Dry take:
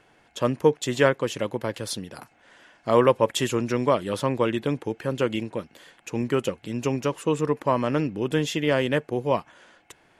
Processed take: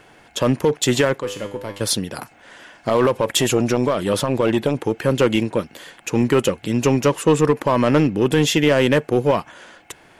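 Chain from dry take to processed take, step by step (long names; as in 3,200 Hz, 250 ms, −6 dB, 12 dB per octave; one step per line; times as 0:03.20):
high-shelf EQ 11,000 Hz +5 dB
in parallel at −9.5 dB: wave folding −21.5 dBFS
0:01.20–0:01.81: on the sum: tuned comb filter 100 Hz, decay 0.52 s, harmonics all, mix 80%
boost into a limiter +13 dB
0:03.06–0:04.96: saturating transformer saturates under 340 Hz
level −5.5 dB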